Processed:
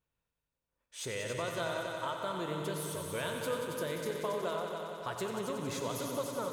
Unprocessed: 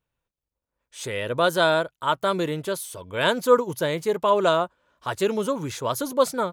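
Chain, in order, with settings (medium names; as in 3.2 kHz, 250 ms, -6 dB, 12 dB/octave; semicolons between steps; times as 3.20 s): compression, threshold -30 dBFS, peak gain reduction 17.5 dB; multi-head delay 92 ms, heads all three, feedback 68%, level -10 dB; on a send at -8 dB: reverberation, pre-delay 3 ms; on the sum: trim -5.5 dB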